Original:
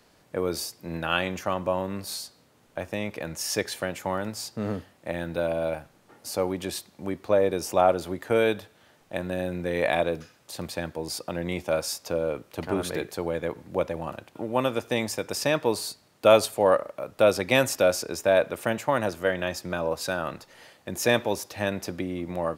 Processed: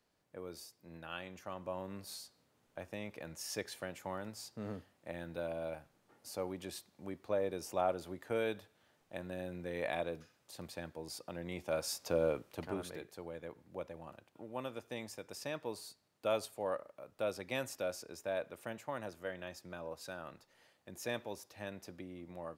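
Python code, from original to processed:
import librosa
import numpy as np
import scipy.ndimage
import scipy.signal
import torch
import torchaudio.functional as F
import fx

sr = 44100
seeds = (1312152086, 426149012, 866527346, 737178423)

y = fx.gain(x, sr, db=fx.line((1.29, -19.0), (1.92, -13.0), (11.49, -13.0), (12.25, -4.0), (13.01, -17.0)))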